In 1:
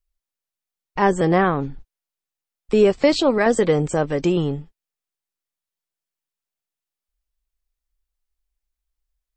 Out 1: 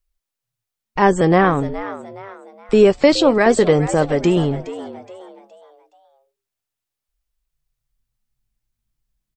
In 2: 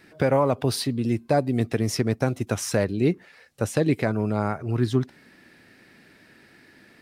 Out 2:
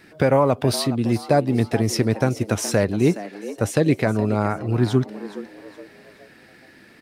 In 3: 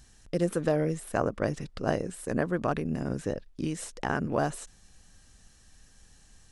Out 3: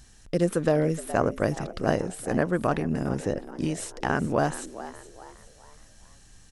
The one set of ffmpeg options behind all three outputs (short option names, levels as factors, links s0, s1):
-filter_complex "[0:a]asplit=5[s0][s1][s2][s3][s4];[s1]adelay=419,afreqshift=99,volume=0.188[s5];[s2]adelay=838,afreqshift=198,volume=0.0716[s6];[s3]adelay=1257,afreqshift=297,volume=0.0272[s7];[s4]adelay=1676,afreqshift=396,volume=0.0104[s8];[s0][s5][s6][s7][s8]amix=inputs=5:normalize=0,volume=1.5"